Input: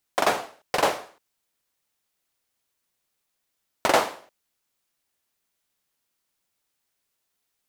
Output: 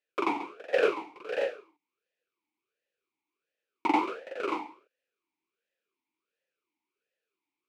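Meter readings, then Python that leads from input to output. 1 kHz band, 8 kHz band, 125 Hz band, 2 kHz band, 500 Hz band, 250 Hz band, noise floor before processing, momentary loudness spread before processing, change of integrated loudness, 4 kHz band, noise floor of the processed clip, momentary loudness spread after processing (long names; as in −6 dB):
−4.5 dB, below −20 dB, below −10 dB, −5.0 dB, −1.5 dB, +3.5 dB, −79 dBFS, 10 LU, −6.0 dB, −11.0 dB, below −85 dBFS, 11 LU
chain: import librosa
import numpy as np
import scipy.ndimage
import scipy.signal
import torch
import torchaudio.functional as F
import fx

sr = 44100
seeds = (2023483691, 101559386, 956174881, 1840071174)

y = fx.echo_multitap(x, sr, ms=(138, 418, 550, 583), db=(-12.0, -18.0, -9.0, -7.5))
y = fx.vowel_sweep(y, sr, vowels='e-u', hz=1.4)
y = y * 10.0 ** (7.5 / 20.0)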